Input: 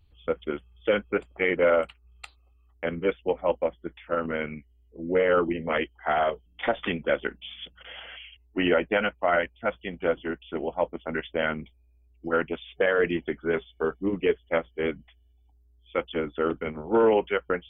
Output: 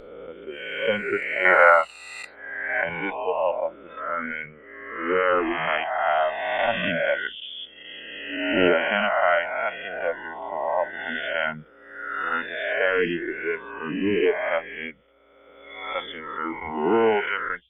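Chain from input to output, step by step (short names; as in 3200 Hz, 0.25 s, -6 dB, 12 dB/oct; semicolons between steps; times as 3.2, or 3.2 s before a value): spectral swells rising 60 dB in 2.29 s; spectral noise reduction 16 dB; 1.45–2.84 band shelf 1200 Hz +11 dB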